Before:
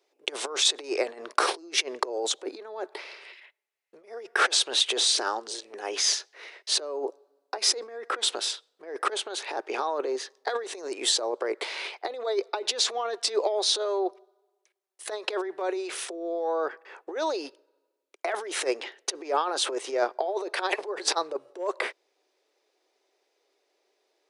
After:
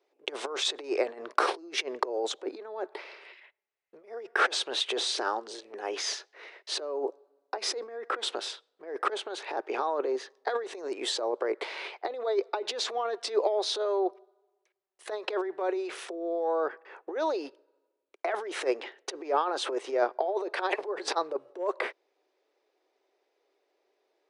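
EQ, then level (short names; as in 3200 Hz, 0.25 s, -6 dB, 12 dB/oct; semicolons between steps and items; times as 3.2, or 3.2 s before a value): LPF 2000 Hz 6 dB/oct; 0.0 dB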